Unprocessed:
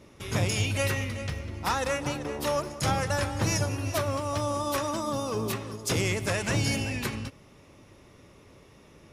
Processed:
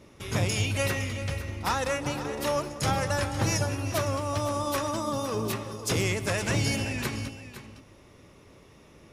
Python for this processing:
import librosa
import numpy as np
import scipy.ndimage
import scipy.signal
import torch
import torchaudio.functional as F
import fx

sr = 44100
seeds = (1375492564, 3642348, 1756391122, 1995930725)

y = x + 10.0 ** (-12.5 / 20.0) * np.pad(x, (int(510 * sr / 1000.0), 0))[:len(x)]